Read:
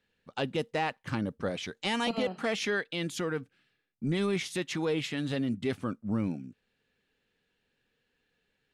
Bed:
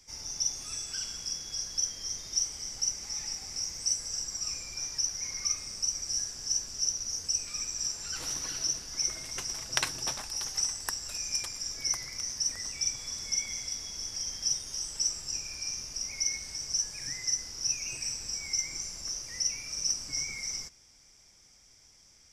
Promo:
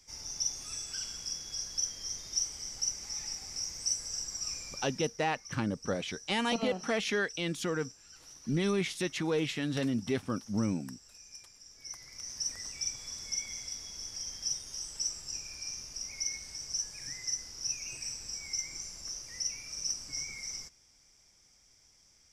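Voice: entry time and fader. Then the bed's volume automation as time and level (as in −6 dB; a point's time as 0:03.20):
4.45 s, −0.5 dB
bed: 0:04.71 −2.5 dB
0:05.23 −18 dB
0:11.67 −18 dB
0:12.40 −4.5 dB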